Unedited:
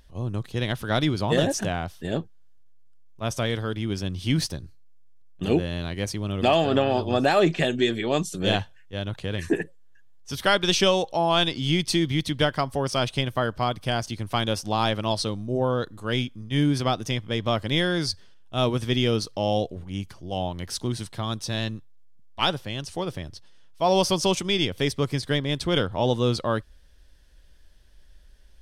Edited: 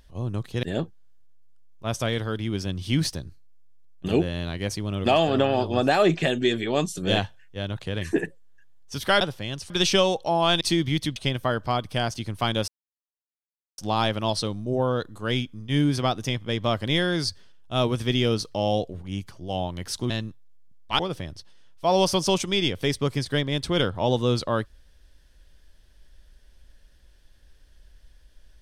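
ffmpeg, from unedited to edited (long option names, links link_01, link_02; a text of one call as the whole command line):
ffmpeg -i in.wav -filter_complex "[0:a]asplit=9[link_01][link_02][link_03][link_04][link_05][link_06][link_07][link_08][link_09];[link_01]atrim=end=0.632[link_10];[link_02]atrim=start=1.998:end=10.582[link_11];[link_03]atrim=start=22.468:end=22.962[link_12];[link_04]atrim=start=10.578:end=11.492[link_13];[link_05]atrim=start=11.838:end=12.392[link_14];[link_06]atrim=start=13.078:end=14.6,asetpts=PTS-STARTPTS,afade=type=out:start_time=1.518:duration=0.004:curve=hsin,apad=pad_dur=1.1[link_15];[link_07]atrim=start=14.6:end=20.922,asetpts=PTS-STARTPTS,afade=type=in:duration=0.004:curve=hsin[link_16];[link_08]atrim=start=21.578:end=22.472[link_17];[link_09]atrim=start=22.958[link_18];[link_10][link_11]acrossfade=duration=0.004:curve1=hsin:curve2=hsin[link_19];[link_19][link_12]acrossfade=duration=0.004:curve1=hsin:curve2=hsin[link_20];[link_20][link_13]acrossfade=duration=0.004:curve1=hsin:curve2=hsin[link_21];[link_21][link_14]acrossfade=duration=0.004:curve1=hsin:curve2=hsin[link_22];[link_15][link_16]concat=n=2:v=0:a=1[link_23];[link_22][link_23]acrossfade=duration=0.004:curve1=hsin:curve2=hsin[link_24];[link_24][link_17]acrossfade=duration=0.004:curve1=hsin:curve2=hsin[link_25];[link_25][link_18]acrossfade=duration=0.004:curve1=hsin:curve2=hsin" out.wav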